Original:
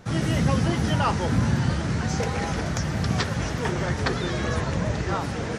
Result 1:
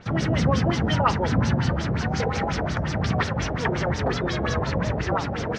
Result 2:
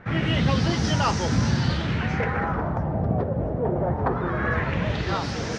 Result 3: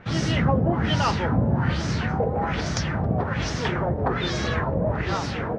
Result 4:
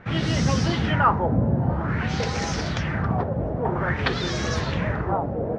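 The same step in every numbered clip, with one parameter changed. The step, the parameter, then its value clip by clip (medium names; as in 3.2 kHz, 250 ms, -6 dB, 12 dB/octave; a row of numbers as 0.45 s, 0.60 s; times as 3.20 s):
LFO low-pass, rate: 5.6 Hz, 0.22 Hz, 1.2 Hz, 0.51 Hz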